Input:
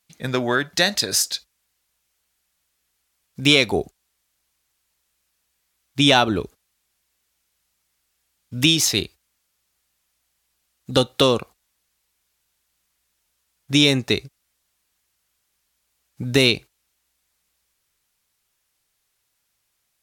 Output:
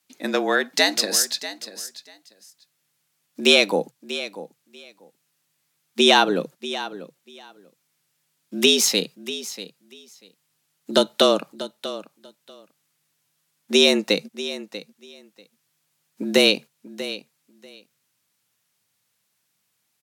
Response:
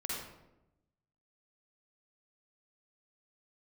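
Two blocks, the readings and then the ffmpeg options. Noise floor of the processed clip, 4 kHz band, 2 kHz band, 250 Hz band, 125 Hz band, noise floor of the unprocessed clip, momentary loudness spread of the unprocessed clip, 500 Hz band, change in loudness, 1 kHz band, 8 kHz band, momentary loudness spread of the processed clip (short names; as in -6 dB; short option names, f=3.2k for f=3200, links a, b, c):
-73 dBFS, +0.5 dB, 0.0 dB, -2.0 dB, -15.5 dB, -73 dBFS, 12 LU, +2.5 dB, -1.5 dB, +1.0 dB, +0.5 dB, 20 LU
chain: -af "afreqshift=95,aecho=1:1:640|1280:0.2|0.0319"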